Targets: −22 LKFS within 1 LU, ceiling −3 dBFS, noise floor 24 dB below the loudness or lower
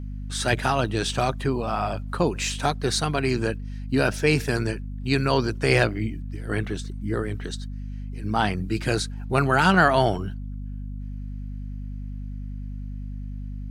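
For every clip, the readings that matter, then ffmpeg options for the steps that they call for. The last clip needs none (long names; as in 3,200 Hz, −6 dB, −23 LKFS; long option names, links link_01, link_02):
mains hum 50 Hz; hum harmonics up to 250 Hz; level of the hum −30 dBFS; integrated loudness −24.5 LKFS; sample peak −4.0 dBFS; target loudness −22.0 LKFS
→ -af "bandreject=frequency=50:width_type=h:width=4,bandreject=frequency=100:width_type=h:width=4,bandreject=frequency=150:width_type=h:width=4,bandreject=frequency=200:width_type=h:width=4,bandreject=frequency=250:width_type=h:width=4"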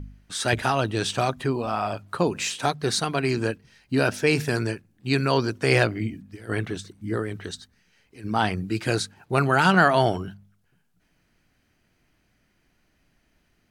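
mains hum none found; integrated loudness −24.5 LKFS; sample peak −3.5 dBFS; target loudness −22.0 LKFS
→ -af "volume=2.5dB,alimiter=limit=-3dB:level=0:latency=1"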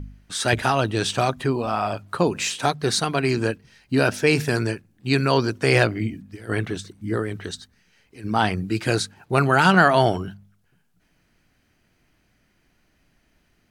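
integrated loudness −22.0 LKFS; sample peak −3.0 dBFS; background noise floor −65 dBFS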